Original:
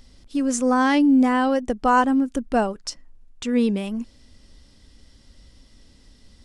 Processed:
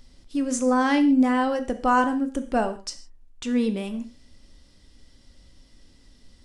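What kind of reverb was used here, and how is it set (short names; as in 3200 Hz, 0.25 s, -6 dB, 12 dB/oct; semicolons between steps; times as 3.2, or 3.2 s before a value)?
non-linear reverb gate 0.18 s falling, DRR 8 dB; gain -3 dB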